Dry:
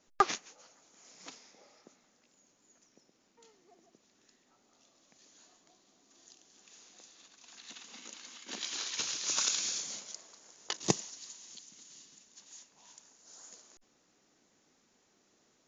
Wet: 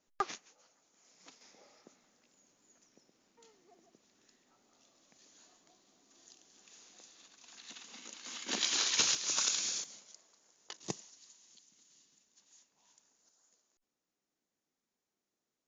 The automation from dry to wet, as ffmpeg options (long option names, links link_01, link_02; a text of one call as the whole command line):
ffmpeg -i in.wav -af "asetnsamples=nb_out_samples=441:pad=0,asendcmd='1.41 volume volume -1dB;8.26 volume volume 6.5dB;9.15 volume volume -1dB;9.84 volume volume -11dB;13.29 volume volume -19dB',volume=-8.5dB" out.wav